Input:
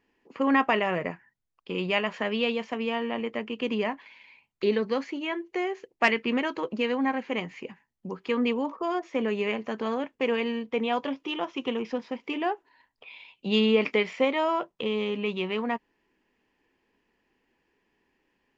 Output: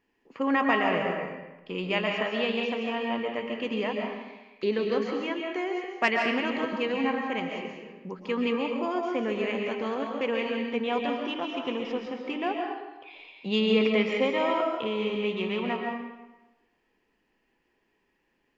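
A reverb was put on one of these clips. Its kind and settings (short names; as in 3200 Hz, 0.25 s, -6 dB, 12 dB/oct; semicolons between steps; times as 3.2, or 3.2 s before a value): digital reverb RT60 1.1 s, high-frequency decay 0.8×, pre-delay 95 ms, DRR 1 dB; gain -2.5 dB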